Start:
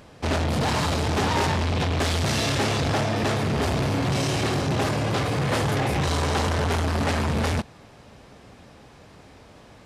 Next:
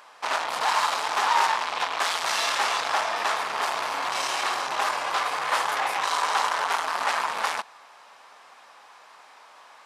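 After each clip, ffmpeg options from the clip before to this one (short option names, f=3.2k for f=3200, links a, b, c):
-af "highpass=f=1k:t=q:w=2.2"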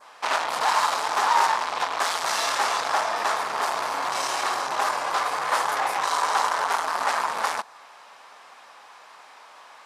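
-af "adynamicequalizer=threshold=0.00794:dfrequency=2800:dqfactor=1.1:tfrequency=2800:tqfactor=1.1:attack=5:release=100:ratio=0.375:range=3:mode=cutabove:tftype=bell,volume=2.5dB"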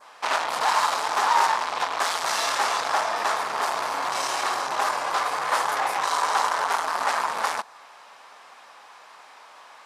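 -af "asoftclip=type=hard:threshold=-9.5dB"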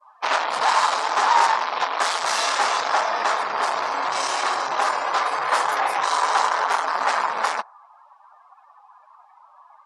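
-af "afftdn=nr=27:nf=-41,volume=3dB"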